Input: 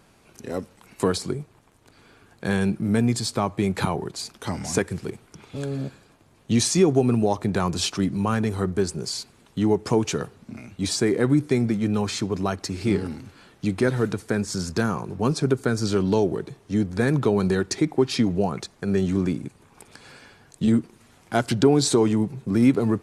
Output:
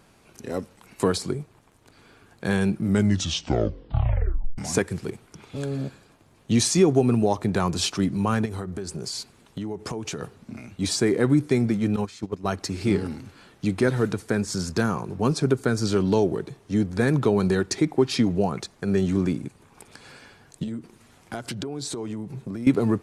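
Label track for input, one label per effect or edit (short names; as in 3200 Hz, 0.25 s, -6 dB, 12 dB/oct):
2.830000	2.830000	tape stop 1.75 s
8.450000	10.230000	compressor 12:1, threshold -27 dBFS
11.960000	12.470000	gate -24 dBFS, range -15 dB
20.630000	22.670000	compressor 10:1, threshold -28 dBFS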